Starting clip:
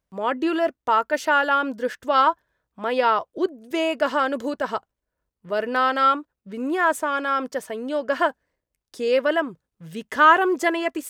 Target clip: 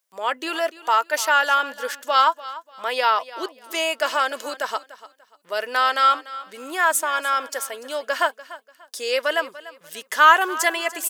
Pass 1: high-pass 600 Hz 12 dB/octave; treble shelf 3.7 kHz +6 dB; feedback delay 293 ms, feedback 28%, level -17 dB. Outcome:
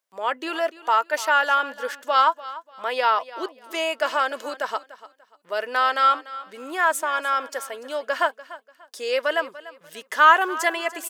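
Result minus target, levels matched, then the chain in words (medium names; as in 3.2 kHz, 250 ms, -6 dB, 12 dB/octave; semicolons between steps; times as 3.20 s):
8 kHz band -6.0 dB
high-pass 600 Hz 12 dB/octave; treble shelf 3.7 kHz +15 dB; feedback delay 293 ms, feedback 28%, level -17 dB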